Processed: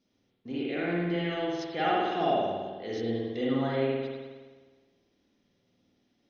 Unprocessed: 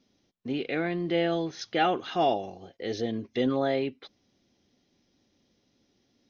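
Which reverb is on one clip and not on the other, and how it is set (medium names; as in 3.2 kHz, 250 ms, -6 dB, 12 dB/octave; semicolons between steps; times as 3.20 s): spring tank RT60 1.4 s, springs 52 ms, chirp 55 ms, DRR -5.5 dB; trim -7.5 dB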